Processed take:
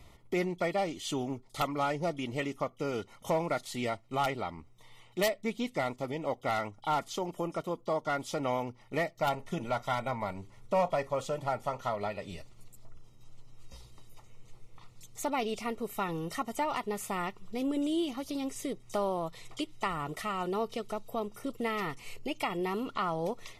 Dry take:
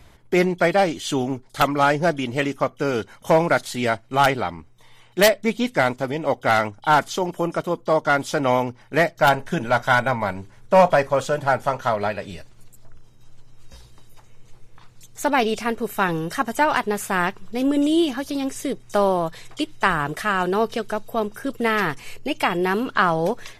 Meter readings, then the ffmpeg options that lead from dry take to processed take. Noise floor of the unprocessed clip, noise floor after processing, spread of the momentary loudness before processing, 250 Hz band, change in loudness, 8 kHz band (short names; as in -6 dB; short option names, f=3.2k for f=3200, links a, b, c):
-50 dBFS, -57 dBFS, 9 LU, -11.5 dB, -12.5 dB, -10.0 dB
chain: -af "acompressor=threshold=-34dB:ratio=1.5,asuperstop=centerf=1600:order=12:qfactor=4.7,volume=-5.5dB"